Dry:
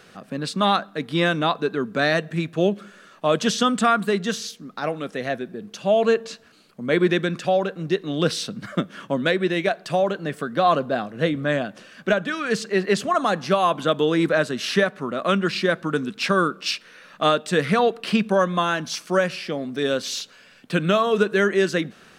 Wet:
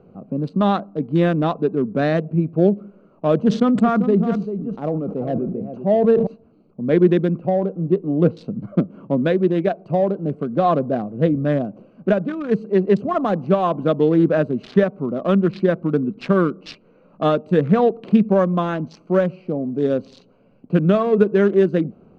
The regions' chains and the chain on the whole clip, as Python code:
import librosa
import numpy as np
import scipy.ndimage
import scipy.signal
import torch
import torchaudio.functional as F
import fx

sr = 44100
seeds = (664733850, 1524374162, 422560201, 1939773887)

y = fx.chain(x, sr, fx.high_shelf(hz=2700.0, db=-9.5),
    fx.echo_single(ms=391, db=-9.5),
    fx.sustainer(db_per_s=62.0), at=(3.36, 6.27))
y = fx.chain(y, sr, fx.lowpass(hz=3500.0, slope=12),
    fx.high_shelf(hz=2200.0, db=-5.5),
    fx.doubler(ms=17.0, db=-13.0), at=(7.38, 8.37))
y = fx.wiener(y, sr, points=25)
y = scipy.signal.sosfilt(scipy.signal.bessel(2, 4600.0, 'lowpass', norm='mag', fs=sr, output='sos'), y)
y = fx.tilt_shelf(y, sr, db=7.5, hz=890.0)